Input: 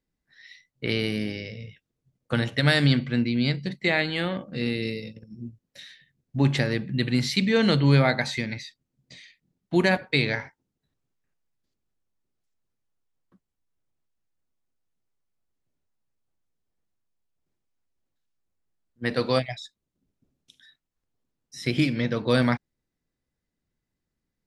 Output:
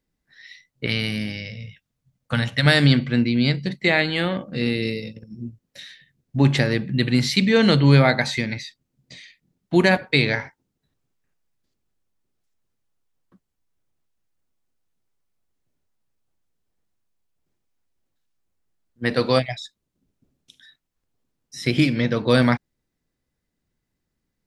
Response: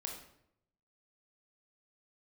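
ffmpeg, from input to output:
-filter_complex "[0:a]asettb=1/sr,asplit=3[a][b][c];[a]atrim=end=0.864[d];[b]atrim=start=0.86:end=2.66,asetpts=PTS-STARTPTS,afade=t=in:d=0.004:c=qsin,afade=t=out:st=1.796:d=0.004:c=qsin,equalizer=f=380:w=2.1:g=-15[e];[c]atrim=start=2.656[f];[d][e]acrossfade=d=0.004:c1=hsin:c2=qsin[g];[g][f]acrossfade=d=0.004:c1=qsin:c2=hsin,volume=4.5dB"

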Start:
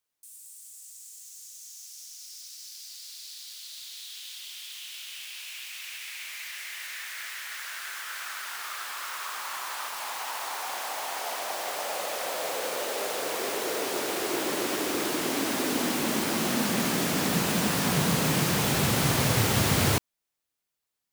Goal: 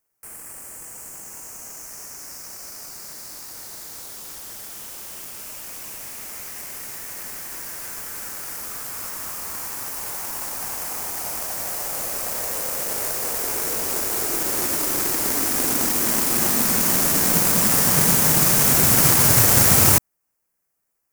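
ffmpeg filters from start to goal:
-filter_complex "[0:a]aexciter=amount=4.9:drive=6.5:freq=5.3k,lowshelf=f=160:g=4.5,asplit=2[a][b];[b]acrusher=samples=12:mix=1:aa=0.000001,volume=-10dB[c];[a][c]amix=inputs=2:normalize=0,aeval=exprs='1*(cos(1*acos(clip(val(0)/1,-1,1)))-cos(1*PI/2))+0.0891*(cos(7*acos(clip(val(0)/1,-1,1)))-cos(7*PI/2))':c=same"

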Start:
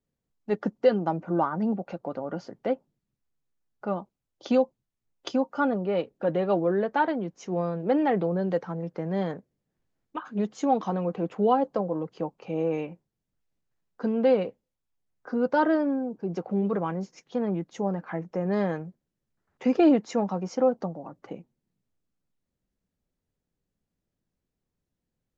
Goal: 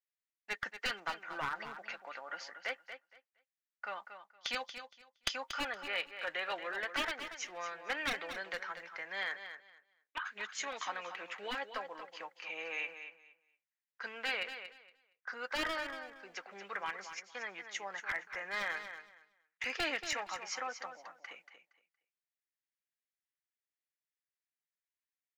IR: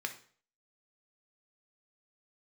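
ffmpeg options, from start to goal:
-af "agate=range=-15dB:threshold=-49dB:ratio=16:detection=peak,highpass=f=1.9k:t=q:w=2.8,aeval=exprs='clip(val(0),-1,0.0282)':c=same,afftfilt=real='re*lt(hypot(re,im),0.1)':imag='im*lt(hypot(re,im),0.1)':win_size=1024:overlap=0.75,aecho=1:1:233|466|699:0.316|0.0632|0.0126,volume=3dB"

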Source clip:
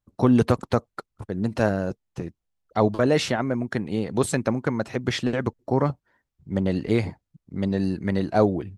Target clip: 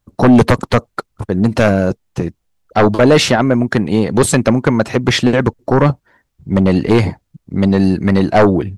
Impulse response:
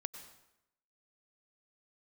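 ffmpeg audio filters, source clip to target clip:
-af "aeval=exprs='0.562*sin(PI/2*2.51*val(0)/0.562)':c=same,volume=1.5dB"

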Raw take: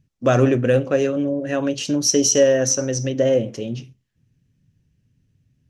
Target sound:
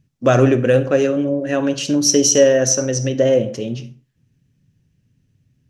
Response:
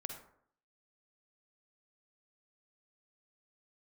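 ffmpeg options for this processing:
-filter_complex "[0:a]asplit=2[a][b];[b]highpass=81[c];[1:a]atrim=start_sample=2205,afade=t=out:st=0.25:d=0.01,atrim=end_sample=11466[d];[c][d]afir=irnorm=-1:irlink=0,volume=-4dB[e];[a][e]amix=inputs=2:normalize=0"

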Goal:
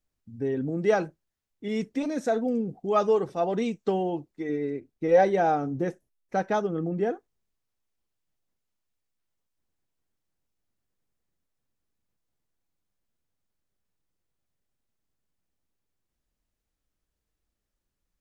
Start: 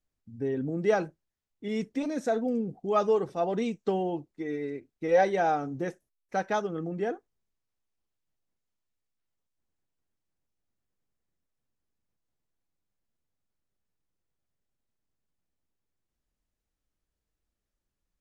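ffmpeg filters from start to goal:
-filter_complex "[0:a]asettb=1/sr,asplit=3[a][b][c];[a]atrim=end=4.494[d];[b]atrim=start=4.49:end=7.11,asetpts=PTS-STARTPTS,afade=t=in:d=0.004:c=qsin,afade=t=out:st=2.616:d=0.004:c=qsin,tiltshelf=f=800:g=3.5[e];[c]atrim=start=7.106[f];[d][e]acrossfade=d=0.004:c1=hsin:c2=qsin[g];[g][f]acrossfade=d=0.004:c1=qsin:c2=hsin,volume=2dB"

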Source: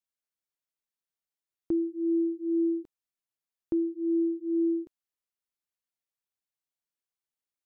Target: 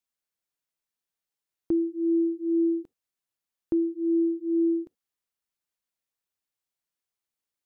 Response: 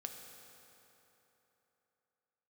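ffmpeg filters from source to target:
-filter_complex "[0:a]asplit=2[a][b];[1:a]atrim=start_sample=2205,atrim=end_sample=3528[c];[b][c]afir=irnorm=-1:irlink=0,volume=-11.5dB[d];[a][d]amix=inputs=2:normalize=0,volume=1.5dB"

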